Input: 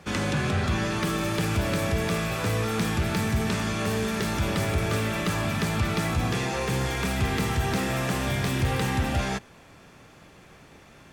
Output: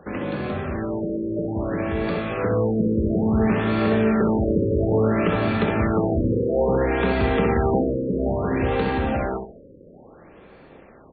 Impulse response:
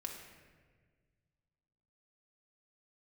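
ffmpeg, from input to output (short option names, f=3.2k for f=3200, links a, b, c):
-filter_complex "[0:a]asplit=2[a][b];[b]acompressor=threshold=-34dB:ratio=6,volume=2.5dB[c];[a][c]amix=inputs=2:normalize=0,equalizer=f=125:t=o:w=1:g=-5,equalizer=f=250:t=o:w=1:g=4,equalizer=f=500:t=o:w=1:g=7,equalizer=f=4k:t=o:w=1:g=-5,dynaudnorm=f=220:g=21:m=9.5dB,asplit=2[d][e];[e]adelay=64,lowpass=f=2k:p=1,volume=-4dB,asplit=2[f][g];[g]adelay=64,lowpass=f=2k:p=1,volume=0.34,asplit=2[h][i];[i]adelay=64,lowpass=f=2k:p=1,volume=0.34,asplit=2[j][k];[k]adelay=64,lowpass=f=2k:p=1,volume=0.34[l];[d][f][h][j][l]amix=inputs=5:normalize=0,afftfilt=real='re*lt(b*sr/1024,560*pow(4700/560,0.5+0.5*sin(2*PI*0.59*pts/sr)))':imag='im*lt(b*sr/1024,560*pow(4700/560,0.5+0.5*sin(2*PI*0.59*pts/sr)))':win_size=1024:overlap=0.75,volume=-7.5dB"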